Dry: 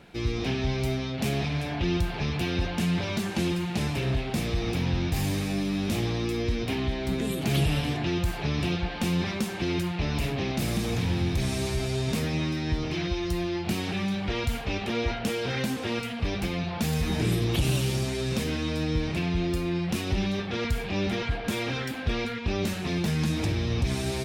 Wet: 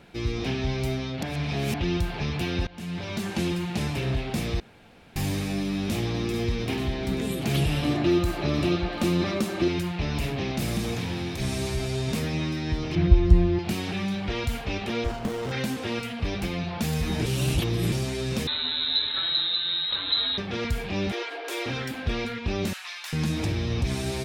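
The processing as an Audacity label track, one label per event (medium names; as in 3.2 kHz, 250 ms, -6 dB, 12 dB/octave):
1.230000	1.740000	reverse
2.670000	3.300000	fade in linear, from -19.5 dB
4.600000	5.160000	room tone
5.700000	6.340000	echo throw 440 ms, feedback 75%, level -9 dB
7.820000	9.680000	small resonant body resonances 330/590/1200/4000 Hz, height 11 dB
10.910000	11.390000	high-pass 130 Hz -> 290 Hz 6 dB/octave
12.950000	13.590000	RIAA curve playback
15.040000	15.520000	sliding maximum over 17 samples
17.260000	17.920000	reverse
18.470000	20.380000	frequency inversion carrier 4 kHz
21.120000	21.660000	steep high-pass 300 Hz 96 dB/octave
22.730000	23.130000	inverse Chebyshev high-pass stop band from 230 Hz, stop band 70 dB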